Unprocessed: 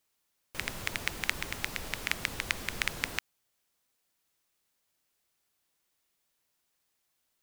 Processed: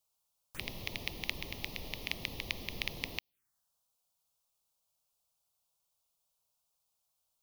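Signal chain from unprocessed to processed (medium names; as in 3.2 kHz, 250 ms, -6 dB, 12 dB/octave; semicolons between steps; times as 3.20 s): touch-sensitive phaser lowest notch 310 Hz, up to 1.5 kHz, full sweep at -38.5 dBFS; trim -2 dB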